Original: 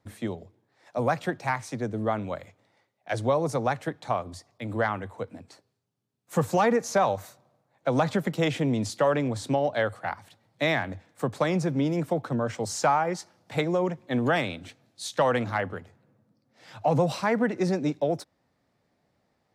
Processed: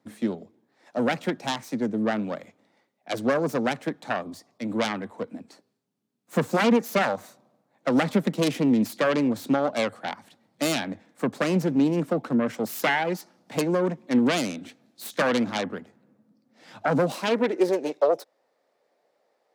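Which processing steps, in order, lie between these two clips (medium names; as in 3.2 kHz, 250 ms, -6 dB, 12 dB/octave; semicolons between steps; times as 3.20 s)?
self-modulated delay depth 0.33 ms; high-pass sweep 220 Hz -> 490 Hz, 16.95–17.89 s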